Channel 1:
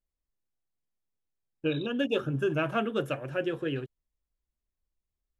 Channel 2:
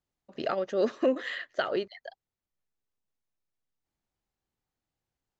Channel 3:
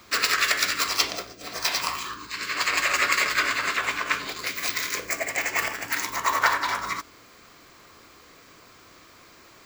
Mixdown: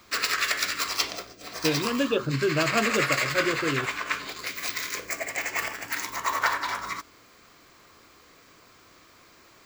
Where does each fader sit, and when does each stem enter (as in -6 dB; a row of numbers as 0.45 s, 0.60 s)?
+3.0 dB, mute, -3.5 dB; 0.00 s, mute, 0.00 s